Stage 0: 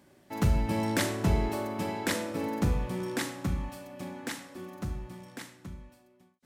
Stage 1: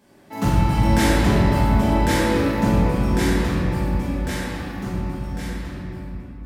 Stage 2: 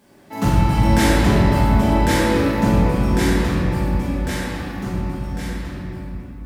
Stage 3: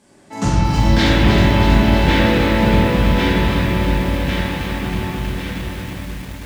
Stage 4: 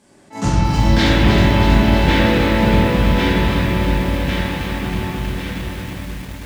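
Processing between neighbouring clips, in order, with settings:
simulated room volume 180 m³, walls hard, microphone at 1.5 m
word length cut 12-bit, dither triangular; trim +2 dB
low-pass sweep 8.3 kHz -> 3.2 kHz, 0.28–1.24 s; feedback echo behind a high-pass 430 ms, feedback 74%, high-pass 1.5 kHz, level -14 dB; bit-crushed delay 319 ms, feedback 80%, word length 6-bit, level -6.5 dB
attacks held to a fixed rise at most 250 dB/s

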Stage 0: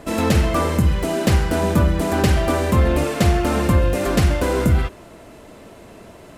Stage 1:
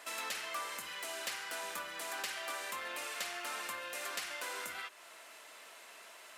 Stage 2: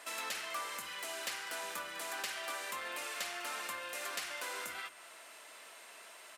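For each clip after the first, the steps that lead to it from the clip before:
high-pass 1.4 kHz 12 dB/octave; compression 2:1, threshold -43 dBFS, peak gain reduction 11 dB; trim -2 dB
delay 201 ms -17.5 dB; whistle 8.6 kHz -63 dBFS

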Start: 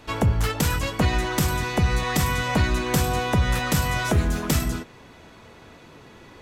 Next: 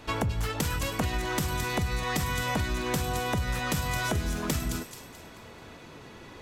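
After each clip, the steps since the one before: compression, threshold -26 dBFS, peak gain reduction 10.5 dB; feedback echo behind a high-pass 217 ms, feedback 42%, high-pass 3.2 kHz, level -5 dB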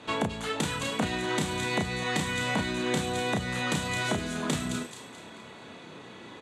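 cabinet simulation 150–9500 Hz, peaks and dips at 200 Hz +3 dB, 3.6 kHz +5 dB, 5.3 kHz -9 dB; doubling 32 ms -4 dB

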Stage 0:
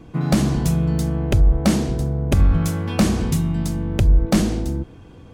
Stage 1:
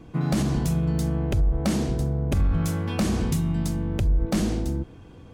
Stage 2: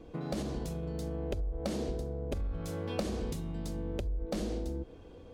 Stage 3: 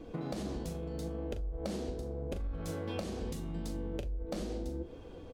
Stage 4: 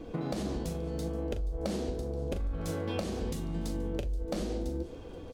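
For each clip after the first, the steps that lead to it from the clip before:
peak limiter -12.5 dBFS, peak gain reduction 5.5 dB; trim -3 dB
bass shelf 150 Hz +7 dB; compression, threshold -22 dBFS, peak gain reduction 10.5 dB; ten-band graphic EQ 125 Hz -9 dB, 500 Hz +11 dB, 4 kHz +5 dB; trim -9 dB
compression, threshold -37 dBFS, peak gain reduction 9.5 dB; flange 0.8 Hz, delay 3 ms, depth 9.7 ms, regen +73%; doubling 40 ms -10 dB; trim +7 dB
feedback echo behind a high-pass 478 ms, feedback 48%, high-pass 3 kHz, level -19 dB; trim +4 dB

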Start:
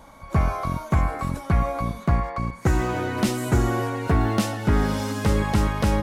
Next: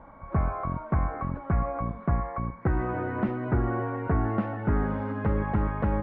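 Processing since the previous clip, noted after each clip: low-pass 1.8 kHz 24 dB/octave; in parallel at -1.5 dB: compression, threshold -31 dBFS, peak gain reduction 15 dB; on the sum: trim -6.5 dB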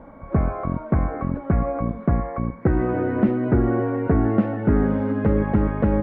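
ten-band graphic EQ 250 Hz +6 dB, 500 Hz +5 dB, 1 kHz -5 dB; trim +4 dB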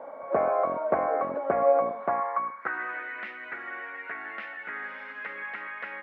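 high-pass sweep 590 Hz -> 2 kHz, 1.78–3.09 s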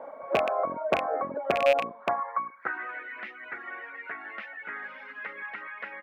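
rattle on loud lows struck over -36 dBFS, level -15 dBFS; reverb removal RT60 0.78 s

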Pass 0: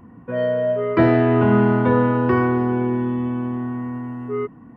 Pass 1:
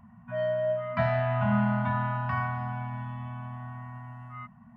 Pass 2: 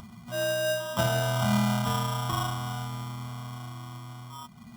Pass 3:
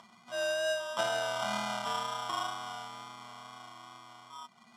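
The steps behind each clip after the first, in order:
FFT band-reject 240–590 Hz; trim -7 dB
sample-rate reducer 2.2 kHz, jitter 0%; upward compressor, threshold -39 dBFS
wow and flutter 19 cents; band-pass 480–7200 Hz; trim -2.5 dB

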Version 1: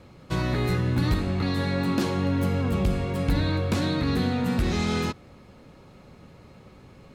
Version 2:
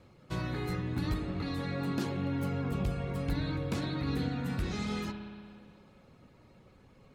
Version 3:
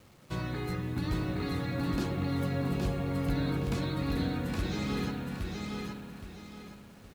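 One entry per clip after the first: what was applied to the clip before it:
feedback comb 100 Hz, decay 1.9 s, mix 60%; reverb removal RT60 0.76 s; spring tank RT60 2.1 s, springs 58 ms, chirp 75 ms, DRR 5 dB; trim -1 dB
bit crusher 10-bit; feedback delay 818 ms, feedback 32%, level -3 dB

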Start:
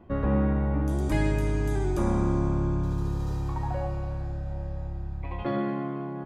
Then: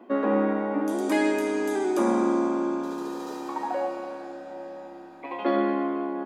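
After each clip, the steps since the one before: elliptic high-pass 230 Hz, stop band 40 dB; trim +6.5 dB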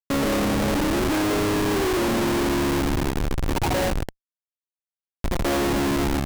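treble shelf 7.7 kHz -12 dB; Schmitt trigger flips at -28 dBFS; trim +5 dB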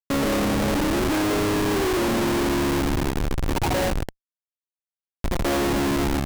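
no audible change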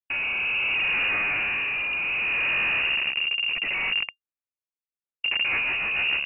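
rotary cabinet horn 0.65 Hz, later 7 Hz, at 4.73 s; frequency inversion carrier 2.8 kHz; trim -2 dB

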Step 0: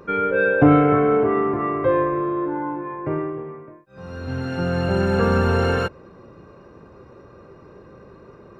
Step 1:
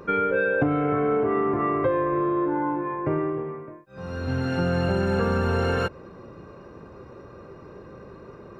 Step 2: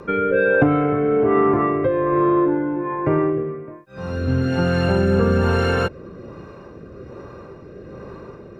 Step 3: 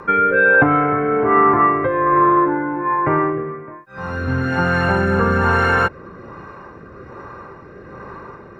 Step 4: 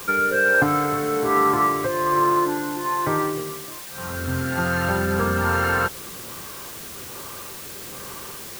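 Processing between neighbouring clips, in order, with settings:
compression 8:1, threshold -21 dBFS, peak gain reduction 12.5 dB; trim +1.5 dB
rotary cabinet horn 1.2 Hz; trim +7.5 dB
high-order bell 1.3 kHz +10 dB; trim -1 dB
added noise white -32 dBFS; trim -5.5 dB

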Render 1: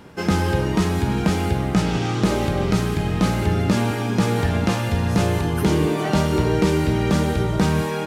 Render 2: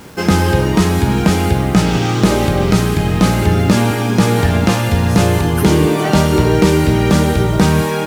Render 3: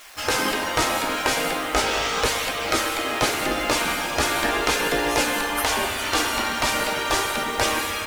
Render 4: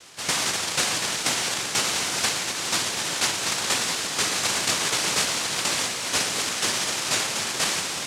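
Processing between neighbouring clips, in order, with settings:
treble shelf 8.4 kHz +5 dB; bit crusher 8-bit; trim +7 dB
flange 0.39 Hz, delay 0.3 ms, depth 1.8 ms, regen -65%; spectral gate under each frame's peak -15 dB weak; spring tank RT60 3.5 s, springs 58 ms, chirp 45 ms, DRR 6.5 dB; trim +3.5 dB
noise-vocoded speech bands 1; trim -2 dB

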